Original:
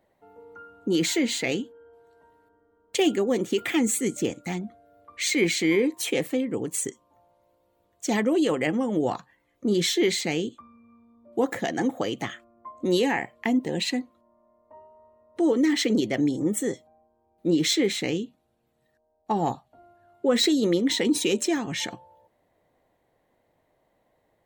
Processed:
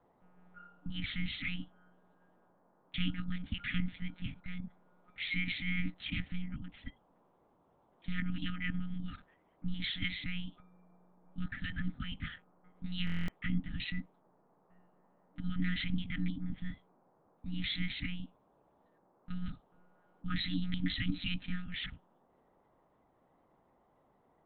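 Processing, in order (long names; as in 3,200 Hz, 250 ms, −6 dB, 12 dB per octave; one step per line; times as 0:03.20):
one-pitch LPC vocoder at 8 kHz 180 Hz
brick-wall band-stop 300–1,200 Hz
noise in a band 130–1,000 Hz −63 dBFS
buffer that repeats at 0:13.05, samples 1,024, times 9
level −7.5 dB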